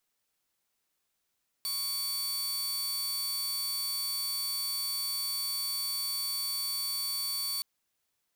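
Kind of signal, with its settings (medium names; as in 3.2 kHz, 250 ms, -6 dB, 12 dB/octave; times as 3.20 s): tone saw 4.52 kHz -28.5 dBFS 5.97 s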